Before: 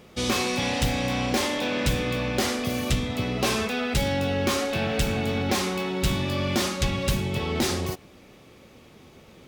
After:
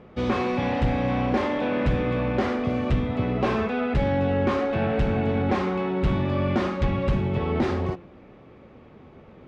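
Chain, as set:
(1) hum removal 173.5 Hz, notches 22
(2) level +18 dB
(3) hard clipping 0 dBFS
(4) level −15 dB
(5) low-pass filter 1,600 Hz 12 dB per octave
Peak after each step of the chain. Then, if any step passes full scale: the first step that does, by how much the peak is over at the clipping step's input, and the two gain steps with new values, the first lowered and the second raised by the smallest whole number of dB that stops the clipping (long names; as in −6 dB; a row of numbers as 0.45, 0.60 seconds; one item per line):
−12.5, +5.5, 0.0, −15.0, −14.5 dBFS
step 2, 5.5 dB
step 2 +12 dB, step 4 −9 dB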